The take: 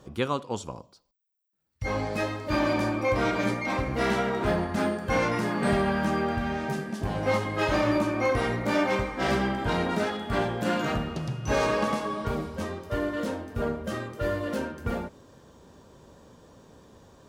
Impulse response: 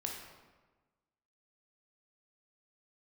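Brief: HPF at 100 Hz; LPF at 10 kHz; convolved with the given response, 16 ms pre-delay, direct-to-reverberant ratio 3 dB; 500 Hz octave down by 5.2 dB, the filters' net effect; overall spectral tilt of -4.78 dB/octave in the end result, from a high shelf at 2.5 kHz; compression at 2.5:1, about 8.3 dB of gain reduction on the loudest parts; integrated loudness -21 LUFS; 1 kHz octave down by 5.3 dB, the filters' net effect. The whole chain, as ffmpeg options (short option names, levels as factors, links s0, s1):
-filter_complex "[0:a]highpass=100,lowpass=10000,equalizer=f=500:t=o:g=-5,equalizer=f=1000:t=o:g=-6.5,highshelf=f=2500:g=6,acompressor=threshold=0.0158:ratio=2.5,asplit=2[s0][s1];[1:a]atrim=start_sample=2205,adelay=16[s2];[s1][s2]afir=irnorm=-1:irlink=0,volume=0.668[s3];[s0][s3]amix=inputs=2:normalize=0,volume=5.01"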